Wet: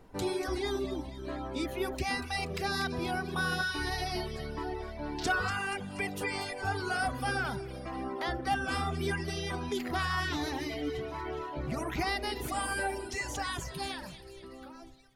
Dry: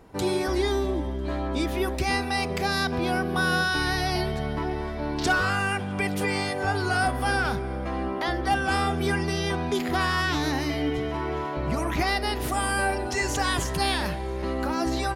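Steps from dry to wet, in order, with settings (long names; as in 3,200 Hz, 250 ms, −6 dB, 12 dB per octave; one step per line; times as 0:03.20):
fade-out on the ending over 2.37 s
background noise brown −53 dBFS
on a send: echo with a time of its own for lows and highs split 1,900 Hz, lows 84 ms, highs 239 ms, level −8.5 dB
on the sum: reverb reduction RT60 1.1 s
level −6 dB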